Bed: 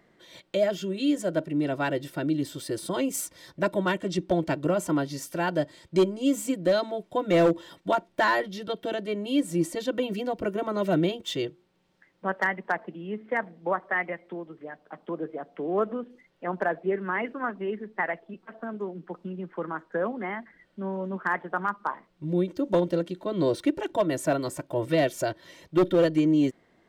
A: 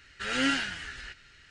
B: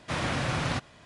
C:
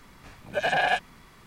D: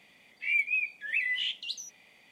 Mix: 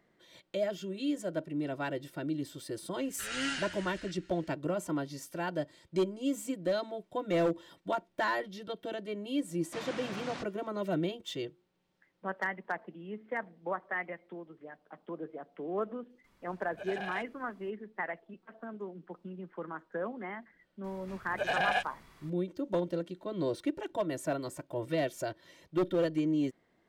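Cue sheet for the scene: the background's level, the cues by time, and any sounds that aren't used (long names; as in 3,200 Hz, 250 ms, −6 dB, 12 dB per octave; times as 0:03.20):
bed −8 dB
0:02.99: mix in A −8 dB + high-shelf EQ 7,100 Hz +9.5 dB
0:09.64: mix in B −10.5 dB + Chebyshev band-pass filter 220–7,100 Hz
0:16.24: mix in C −16.5 dB
0:20.84: mix in C −6 dB
not used: D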